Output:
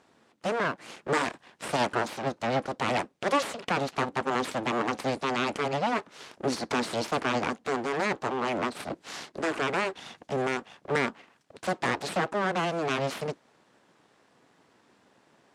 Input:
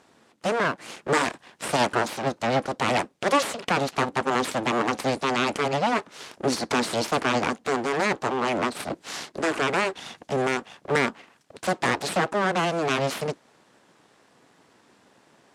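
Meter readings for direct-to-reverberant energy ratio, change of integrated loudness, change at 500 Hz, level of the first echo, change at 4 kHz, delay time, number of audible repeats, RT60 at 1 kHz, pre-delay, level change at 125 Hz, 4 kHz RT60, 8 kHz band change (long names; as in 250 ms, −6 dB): no reverb audible, −4.0 dB, −4.0 dB, no echo audible, −5.0 dB, no echo audible, no echo audible, no reverb audible, no reverb audible, −4.0 dB, no reverb audible, −7.0 dB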